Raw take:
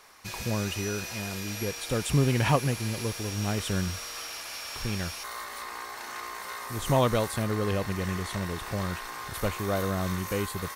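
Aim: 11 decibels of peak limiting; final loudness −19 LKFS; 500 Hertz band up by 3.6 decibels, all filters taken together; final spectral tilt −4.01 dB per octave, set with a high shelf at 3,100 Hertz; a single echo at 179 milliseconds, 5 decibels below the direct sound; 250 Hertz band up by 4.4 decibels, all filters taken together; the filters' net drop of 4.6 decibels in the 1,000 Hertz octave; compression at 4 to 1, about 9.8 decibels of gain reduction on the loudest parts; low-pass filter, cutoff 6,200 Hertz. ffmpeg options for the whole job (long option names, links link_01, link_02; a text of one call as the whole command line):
ffmpeg -i in.wav -af "lowpass=6200,equalizer=frequency=250:width_type=o:gain=5,equalizer=frequency=500:width_type=o:gain=5,equalizer=frequency=1000:width_type=o:gain=-8.5,highshelf=frequency=3100:gain=5,acompressor=threshold=-28dB:ratio=4,alimiter=level_in=4.5dB:limit=-24dB:level=0:latency=1,volume=-4.5dB,aecho=1:1:179:0.562,volume=17.5dB" out.wav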